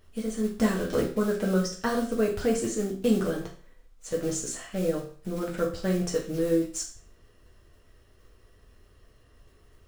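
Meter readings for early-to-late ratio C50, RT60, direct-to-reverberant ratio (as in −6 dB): 8.0 dB, 0.45 s, −2.0 dB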